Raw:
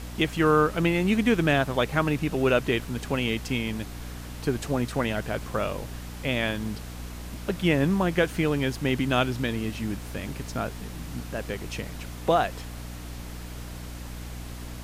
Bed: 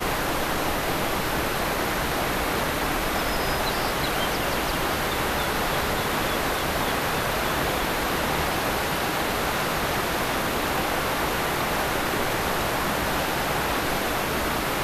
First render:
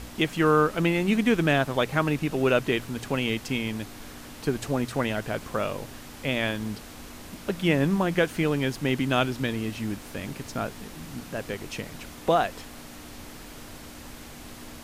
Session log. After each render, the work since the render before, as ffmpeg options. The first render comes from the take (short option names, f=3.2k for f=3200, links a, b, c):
-af "bandreject=f=60:t=h:w=4,bandreject=f=120:t=h:w=4,bandreject=f=180:t=h:w=4"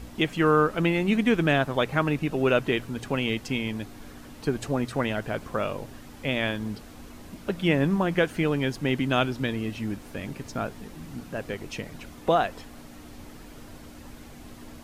-af "afftdn=nr=7:nf=-44"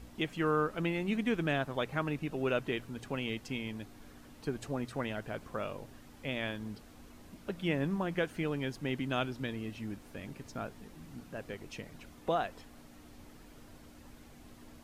-af "volume=-9.5dB"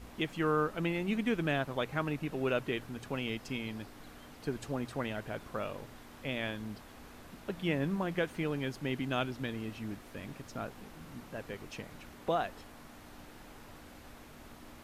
-filter_complex "[1:a]volume=-31dB[a];[0:a][a]amix=inputs=2:normalize=0"